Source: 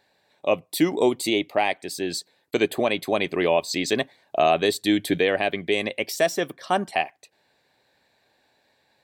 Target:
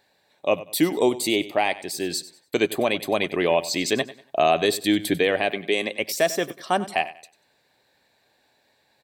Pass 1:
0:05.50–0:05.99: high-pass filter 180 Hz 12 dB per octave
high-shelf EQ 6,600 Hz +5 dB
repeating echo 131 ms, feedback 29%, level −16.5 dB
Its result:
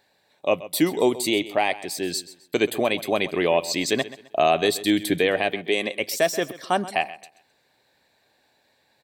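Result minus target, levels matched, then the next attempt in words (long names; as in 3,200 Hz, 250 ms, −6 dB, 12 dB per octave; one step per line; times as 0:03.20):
echo 36 ms late
0:05.50–0:05.99: high-pass filter 180 Hz 12 dB per octave
high-shelf EQ 6,600 Hz +5 dB
repeating echo 95 ms, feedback 29%, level −16.5 dB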